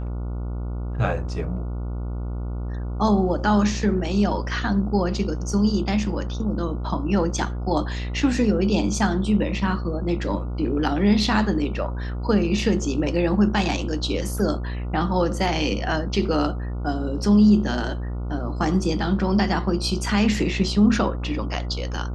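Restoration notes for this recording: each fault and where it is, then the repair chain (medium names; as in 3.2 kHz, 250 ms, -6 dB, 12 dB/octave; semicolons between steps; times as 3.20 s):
buzz 60 Hz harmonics 24 -28 dBFS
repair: de-hum 60 Hz, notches 24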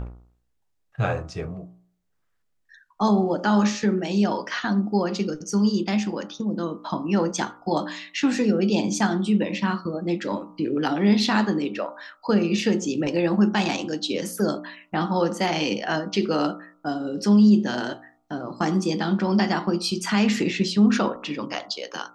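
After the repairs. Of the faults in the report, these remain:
nothing left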